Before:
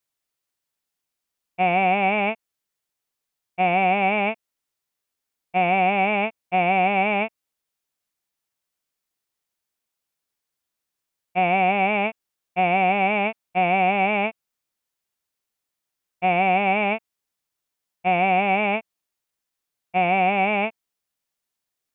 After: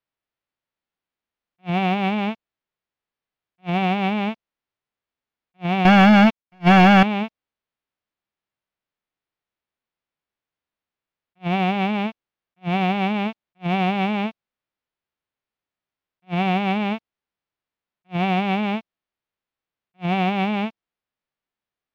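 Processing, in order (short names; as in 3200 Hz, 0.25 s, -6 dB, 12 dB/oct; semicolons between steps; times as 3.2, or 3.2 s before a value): spectral whitening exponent 0.3; dynamic EQ 1600 Hz, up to -7 dB, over -37 dBFS, Q 1.4; 5.85–7.03 sample leveller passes 5; air absorption 270 m; attack slew limiter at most 500 dB/s; gain +1 dB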